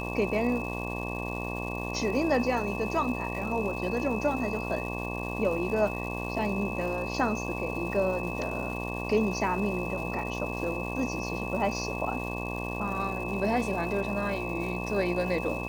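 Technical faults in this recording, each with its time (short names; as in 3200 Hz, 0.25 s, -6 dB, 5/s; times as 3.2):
buzz 60 Hz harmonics 19 -35 dBFS
crackle 530/s -39 dBFS
tone 2600 Hz -37 dBFS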